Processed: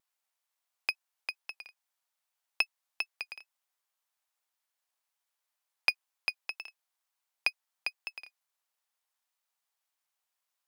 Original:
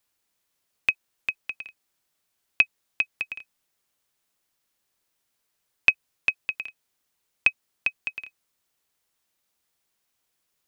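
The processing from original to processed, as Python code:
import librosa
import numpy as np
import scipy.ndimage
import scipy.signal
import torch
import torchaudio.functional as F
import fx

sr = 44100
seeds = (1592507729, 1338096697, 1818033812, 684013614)

y = np.maximum(x, 0.0)
y = fx.highpass_res(y, sr, hz=800.0, q=1.5)
y = fx.wow_flutter(y, sr, seeds[0], rate_hz=2.1, depth_cents=50.0)
y = y * librosa.db_to_amplitude(-4.5)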